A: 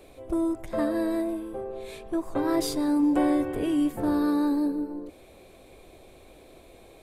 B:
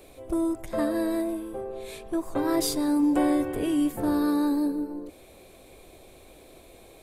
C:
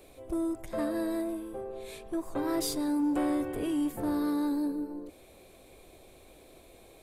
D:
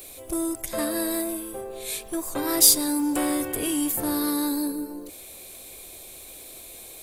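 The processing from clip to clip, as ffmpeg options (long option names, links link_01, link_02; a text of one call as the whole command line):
ffmpeg -i in.wav -af "highshelf=frequency=5500:gain=7" out.wav
ffmpeg -i in.wav -af "asoftclip=type=tanh:threshold=-18dB,volume=-4dB" out.wav
ffmpeg -i in.wav -af "crystalizer=i=6.5:c=0,volume=2.5dB" out.wav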